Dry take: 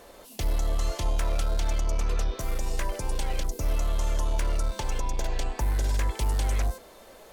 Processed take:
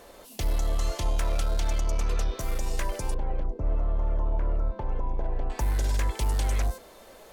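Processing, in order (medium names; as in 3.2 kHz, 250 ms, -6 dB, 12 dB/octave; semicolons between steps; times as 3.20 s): 3.14–5.50 s: low-pass 1 kHz 12 dB/octave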